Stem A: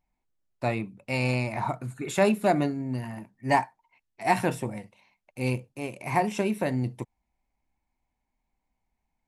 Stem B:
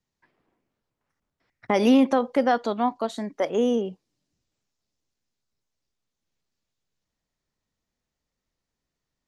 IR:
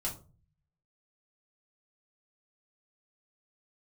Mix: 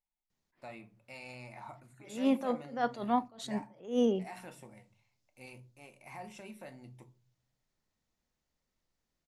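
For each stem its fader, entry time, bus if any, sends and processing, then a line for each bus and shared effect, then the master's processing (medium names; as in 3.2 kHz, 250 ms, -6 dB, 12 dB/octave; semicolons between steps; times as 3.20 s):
-17.5 dB, 0.00 s, send -6.5 dB, bass shelf 480 Hz -8.5 dB; peak limiter -21 dBFS, peak gain reduction 9.5 dB
-2.0 dB, 0.30 s, send -17.5 dB, compression, threshold -20 dBFS, peak gain reduction 7 dB; attacks held to a fixed rise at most 160 dB/s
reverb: on, RT60 0.35 s, pre-delay 3 ms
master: none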